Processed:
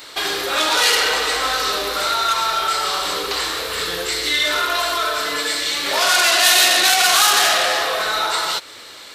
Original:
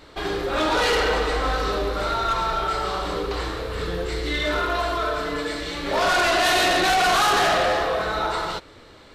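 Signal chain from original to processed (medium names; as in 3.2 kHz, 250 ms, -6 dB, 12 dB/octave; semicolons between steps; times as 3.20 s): tilt EQ +4.5 dB/octave; in parallel at +3 dB: compression, threshold -28 dBFS, peak gain reduction 17 dB; on the sum: trim -1 dB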